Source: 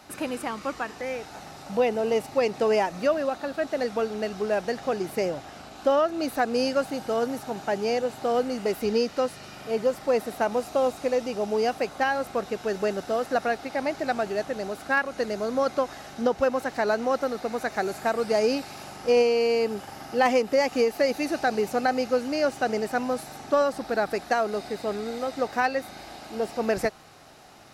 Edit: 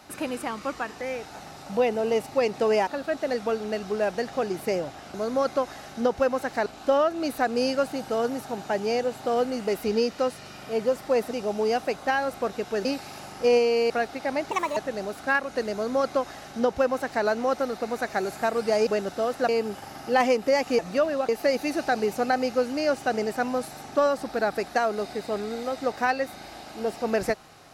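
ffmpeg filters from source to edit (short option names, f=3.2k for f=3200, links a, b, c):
-filter_complex "[0:a]asplit=13[a][b][c][d][e][f][g][h][i][j][k][l][m];[a]atrim=end=2.872[n];[b]atrim=start=3.368:end=5.642[o];[c]atrim=start=15.348:end=16.872[p];[d]atrim=start=5.638:end=10.292[q];[e]atrim=start=11.238:end=12.782[r];[f]atrim=start=18.488:end=19.542[s];[g]atrim=start=13.398:end=14.014[t];[h]atrim=start=14.01:end=14.39,asetpts=PTS-STARTPTS,asetrate=65268,aresample=44100[u];[i]atrim=start=14.386:end=18.492[v];[j]atrim=start=12.778:end=13.402[w];[k]atrim=start=19.538:end=20.842[x];[l]atrim=start=2.868:end=3.372[y];[m]atrim=start=20.838[z];[n][o]acrossfade=d=0.004:c1=hsin:c2=hsin[aa];[aa][p]acrossfade=d=0.004:c1=hsin:c2=hsin[ab];[ab][q]acrossfade=d=0.004:c1=hsin:c2=hsin[ac];[ac][r]acrossfade=d=0.004:c1=hsin:c2=hsin[ad];[ad][s]acrossfade=d=0.004:c1=hsin:c2=hsin[ae];[ae][t]acrossfade=d=0.004:c1=hsin:c2=hsin[af];[af][u]acrossfade=d=0.004:c1=hsin:c2=hsin[ag];[ag][v]acrossfade=d=0.004:c1=hsin:c2=hsin[ah];[ah][w]acrossfade=d=0.004:c1=hsin:c2=hsin[ai];[ai][x]acrossfade=d=0.004:c1=hsin:c2=hsin[aj];[aj][y]acrossfade=d=0.004:c1=hsin:c2=hsin[ak];[ak][z]acrossfade=d=0.004:c1=hsin:c2=hsin"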